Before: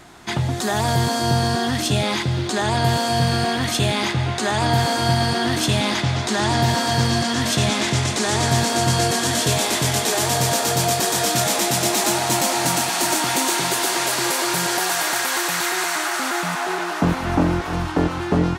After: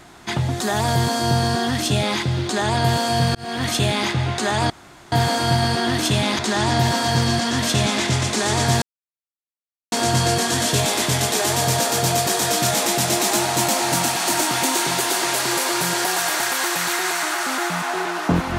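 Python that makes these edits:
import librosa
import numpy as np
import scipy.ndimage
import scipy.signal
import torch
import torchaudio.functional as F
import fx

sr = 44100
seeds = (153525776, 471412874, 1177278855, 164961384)

y = fx.edit(x, sr, fx.fade_in_span(start_s=3.35, length_s=0.31),
    fx.insert_room_tone(at_s=4.7, length_s=0.42),
    fx.cut(start_s=5.97, length_s=0.25),
    fx.insert_silence(at_s=8.65, length_s=1.1), tone=tone)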